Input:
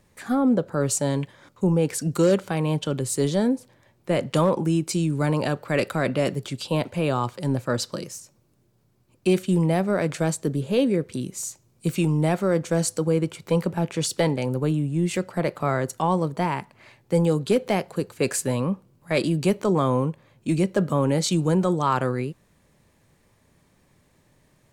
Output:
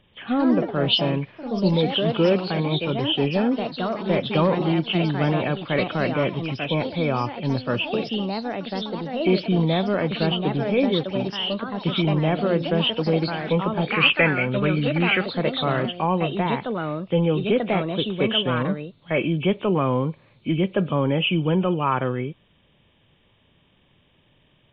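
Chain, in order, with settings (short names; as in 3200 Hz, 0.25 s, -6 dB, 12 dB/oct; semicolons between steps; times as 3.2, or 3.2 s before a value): nonlinear frequency compression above 2200 Hz 4:1; echoes that change speed 0.139 s, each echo +3 st, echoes 3, each echo -6 dB; 13.87–15.26 band shelf 1800 Hz +12 dB 1.3 oct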